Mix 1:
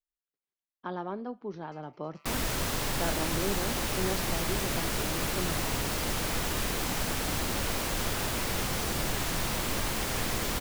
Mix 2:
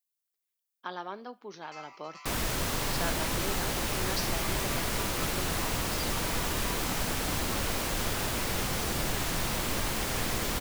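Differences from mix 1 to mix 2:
speech: add tilt +4.5 dB/oct; first sound +10.0 dB; reverb: on, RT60 0.60 s

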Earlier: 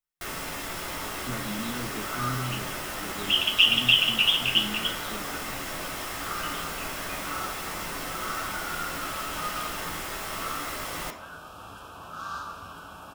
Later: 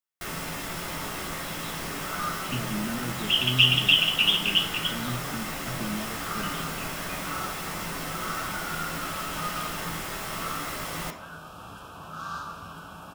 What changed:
speech: entry +1.25 s; master: add bell 160 Hz +8 dB 0.7 oct

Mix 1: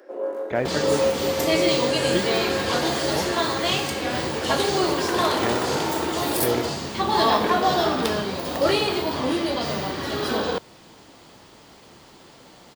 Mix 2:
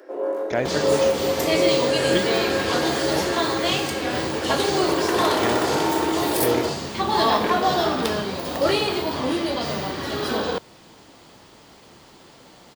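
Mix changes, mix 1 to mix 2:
speech: remove running mean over 8 samples; first sound: send +11.5 dB

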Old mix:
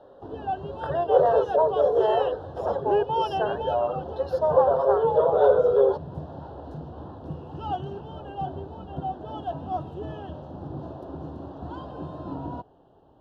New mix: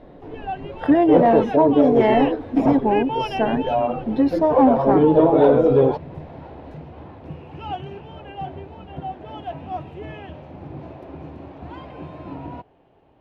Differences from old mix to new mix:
speech: remove rippled Chebyshev high-pass 380 Hz, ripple 6 dB; master: remove Butterworth band-stop 2200 Hz, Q 1.3

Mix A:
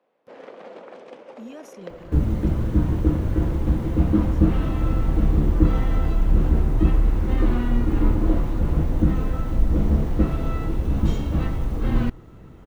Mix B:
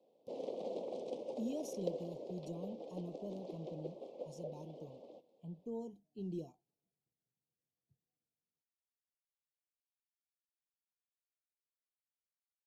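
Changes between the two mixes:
second sound: muted; master: add Chebyshev band-stop 610–3900 Hz, order 2

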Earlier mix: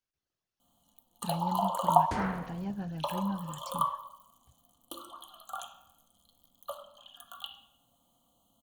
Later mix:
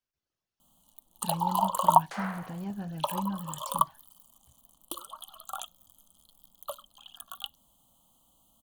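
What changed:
first sound +10.0 dB; second sound: add HPF 620 Hz 24 dB/oct; reverb: off

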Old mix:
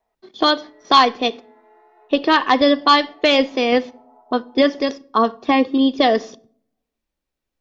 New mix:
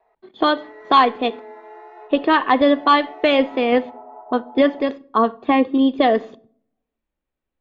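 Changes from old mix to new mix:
speech: add running mean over 8 samples; background +11.5 dB

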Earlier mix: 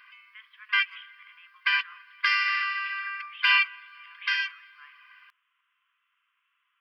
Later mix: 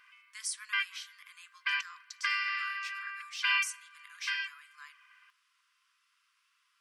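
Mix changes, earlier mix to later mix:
speech: remove steep low-pass 3300 Hz 96 dB/oct; background -7.5 dB

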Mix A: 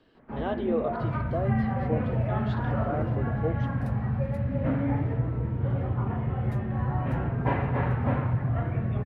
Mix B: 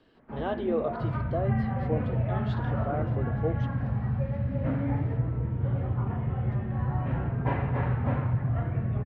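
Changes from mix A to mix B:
first sound -3.0 dB; second sound: add tape spacing loss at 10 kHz 28 dB

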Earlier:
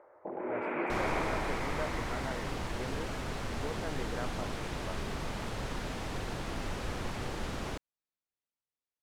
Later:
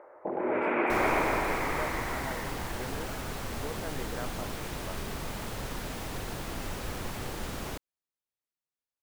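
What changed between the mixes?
first sound +6.5 dB; master: remove air absorption 54 m

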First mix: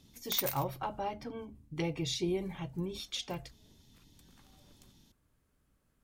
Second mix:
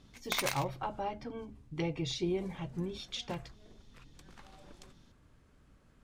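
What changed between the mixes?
background +11.0 dB; master: add air absorption 70 m

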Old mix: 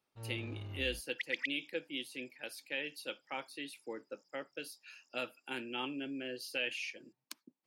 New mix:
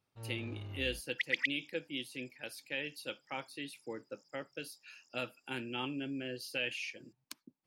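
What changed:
speech: remove HPF 230 Hz 12 dB/oct; second sound +4.5 dB

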